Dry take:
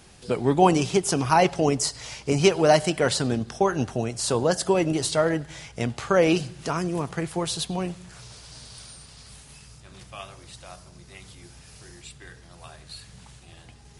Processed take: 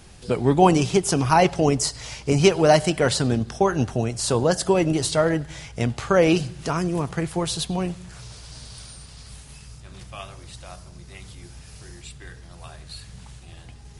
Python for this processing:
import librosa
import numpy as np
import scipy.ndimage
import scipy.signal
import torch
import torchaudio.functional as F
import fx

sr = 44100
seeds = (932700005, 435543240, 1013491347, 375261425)

y = fx.low_shelf(x, sr, hz=100.0, db=9.0)
y = y * librosa.db_to_amplitude(1.5)